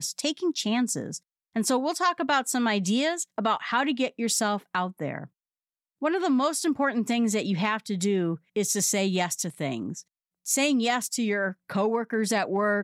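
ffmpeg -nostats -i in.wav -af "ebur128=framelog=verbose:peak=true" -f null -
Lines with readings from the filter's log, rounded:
Integrated loudness:
  I:         -26.4 LUFS
  Threshold: -36.6 LUFS
Loudness range:
  LRA:         2.0 LU
  Threshold: -46.8 LUFS
  LRA low:   -27.8 LUFS
  LRA high:  -25.7 LUFS
True peak:
  Peak:      -11.5 dBFS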